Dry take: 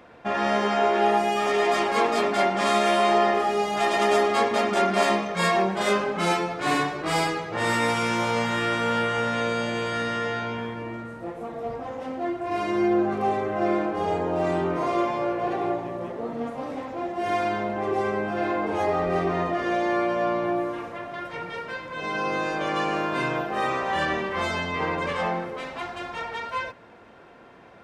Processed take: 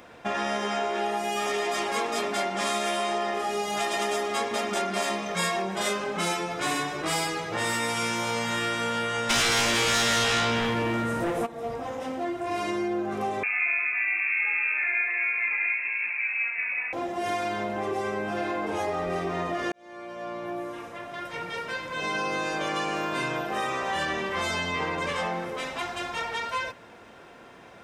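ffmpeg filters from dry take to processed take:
-filter_complex "[0:a]asplit=3[s0][s1][s2];[s0]afade=t=out:st=9.29:d=0.02[s3];[s1]aeval=exprs='0.211*sin(PI/2*5.01*val(0)/0.211)':c=same,afade=t=in:st=9.29:d=0.02,afade=t=out:st=11.45:d=0.02[s4];[s2]afade=t=in:st=11.45:d=0.02[s5];[s3][s4][s5]amix=inputs=3:normalize=0,asettb=1/sr,asplit=3[s6][s7][s8];[s6]atrim=end=13.434[s9];[s7]atrim=start=13.43:end=16.93,asetpts=PTS-STARTPTS,afade=t=in:d=0.004:c=qsin,afade=t=out:st=3.496:d=0.004:c=qsin,lowpass=f=2400:t=q:w=0.5098,lowpass=f=2400:t=q:w=0.6013,lowpass=f=2400:t=q:w=0.9,lowpass=f=2400:t=q:w=2.563,afreqshift=-2800[s10];[s8]atrim=start=16.926[s11];[s9][s10]acrossfade=d=0.004:c1=hsin:c2=qsin[s12];[s12][s11]acrossfade=d=0.004:c1=qsin:c2=hsin,asplit=2[s13][s14];[s13]atrim=end=19.72,asetpts=PTS-STARTPTS,afade=t=out:st=19.716:d=0.004:c=hsin[s15];[s14]atrim=start=19.72,asetpts=PTS-STARTPTS,afade=t=in:d=2.14[s16];[s15][s16]concat=n=2:v=0:a=1,bandreject=f=4400:w=14,acompressor=threshold=0.0447:ratio=4,highshelf=f=3700:g=12"

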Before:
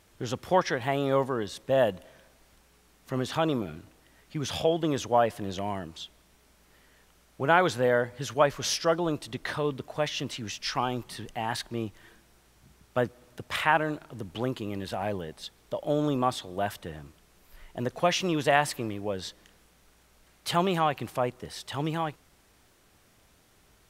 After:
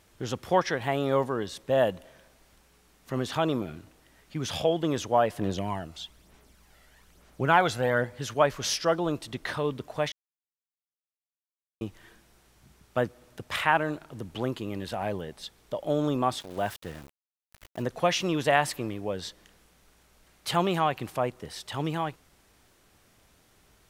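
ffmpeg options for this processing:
-filter_complex "[0:a]asplit=3[s0][s1][s2];[s0]afade=t=out:st=5.37:d=0.02[s3];[s1]aphaser=in_gain=1:out_gain=1:delay=1.5:decay=0.47:speed=1.1:type=sinusoidal,afade=t=in:st=5.37:d=0.02,afade=t=out:st=8.04:d=0.02[s4];[s2]afade=t=in:st=8.04:d=0.02[s5];[s3][s4][s5]amix=inputs=3:normalize=0,asettb=1/sr,asplit=3[s6][s7][s8];[s6]atrim=end=16.404[s9];[s7]atrim=start=16.4:end=17.82,asetpts=PTS-STARTPTS,afade=t=in:d=0.004:c=qsin,afade=t=out:st=1.416:d=0.004:c=qsin,aeval=exprs='val(0)*gte(abs(val(0)),0.00708)':c=same[s10];[s8]atrim=start=17.816[s11];[s9][s10]acrossfade=d=0.004:c1=hsin:c2=qsin[s12];[s12][s11]acrossfade=d=0.004:c1=qsin:c2=hsin,asplit=3[s13][s14][s15];[s13]atrim=end=10.12,asetpts=PTS-STARTPTS,afade=t=out:st=10.116:d=0.004:c=hsin[s16];[s14]atrim=start=10.12:end=11.81,asetpts=PTS-STARTPTS,volume=0[s17];[s15]atrim=start=11.81,asetpts=PTS-STARTPTS,afade=t=in:d=0.004:c=hsin[s18];[s16][s17][s18]concat=n=3:v=0:a=1"

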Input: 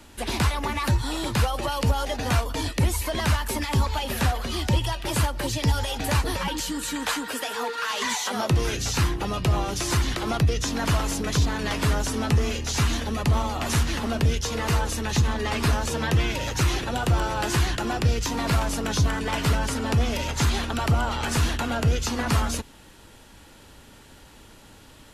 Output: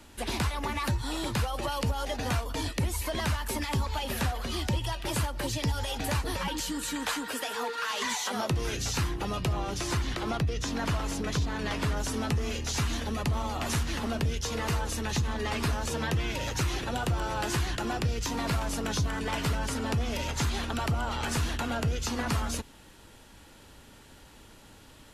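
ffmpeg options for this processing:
-filter_complex "[0:a]asettb=1/sr,asplit=3[s0][s1][s2];[s0]atrim=end=9.534[s3];[s1]atrim=start=9.53:end=11.97,asetpts=PTS-STARTPTS,afade=t=in:d=0.004:c=qsin,afade=t=out:st=2.436:d=0.004:c=qsin,highshelf=f=6800:g=-7[s4];[s2]atrim=start=11.966[s5];[s3][s4]acrossfade=d=0.004:c1=hsin:c2=qsin[s6];[s6][s5]acrossfade=d=0.004:c1=qsin:c2=hsin,acompressor=threshold=0.0708:ratio=2.5,volume=0.668"

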